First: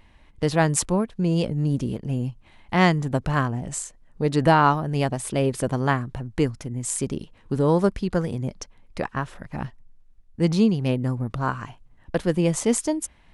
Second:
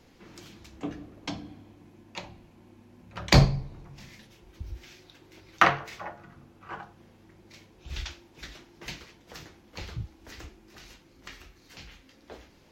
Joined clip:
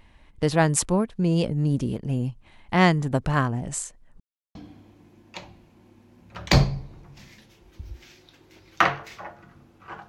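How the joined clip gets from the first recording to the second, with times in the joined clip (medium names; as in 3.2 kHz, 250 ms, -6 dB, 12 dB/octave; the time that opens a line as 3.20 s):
first
4.20–4.55 s: mute
4.55 s: go over to second from 1.36 s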